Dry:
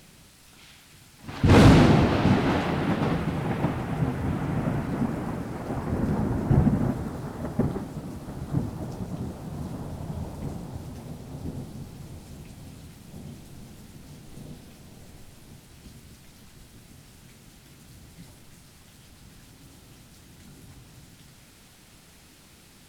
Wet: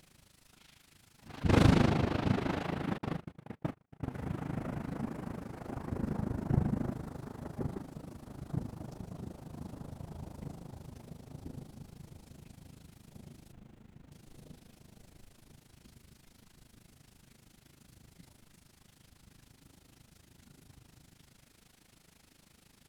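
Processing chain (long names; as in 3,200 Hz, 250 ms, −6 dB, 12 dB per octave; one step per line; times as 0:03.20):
0:13.52–0:14.12: running median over 9 samples
amplitude modulation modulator 26 Hz, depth 70%
0:02.98–0:04.13: noise gate −27 dBFS, range −47 dB
level −6.5 dB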